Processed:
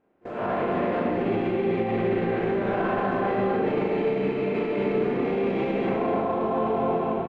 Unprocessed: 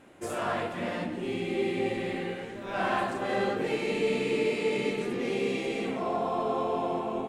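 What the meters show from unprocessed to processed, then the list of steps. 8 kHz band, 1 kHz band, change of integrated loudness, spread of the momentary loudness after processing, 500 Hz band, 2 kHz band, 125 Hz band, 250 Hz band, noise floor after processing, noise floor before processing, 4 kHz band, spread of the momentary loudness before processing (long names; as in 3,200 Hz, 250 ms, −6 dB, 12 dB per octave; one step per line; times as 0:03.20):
below −20 dB, +4.5 dB, +5.0 dB, 1 LU, +5.0 dB, +0.5 dB, +7.5 dB, +6.5 dB, −34 dBFS, −39 dBFS, −5.5 dB, 6 LU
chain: compressor on every frequency bin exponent 0.6
head-to-tape spacing loss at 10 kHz 42 dB
double-tracking delay 36 ms −4 dB
automatic gain control gain up to 15 dB
brickwall limiter −12 dBFS, peak gain reduction 9.5 dB
noise gate with hold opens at −22 dBFS
on a send: single-tap delay 251 ms −6 dB
on the sum: level −6 dB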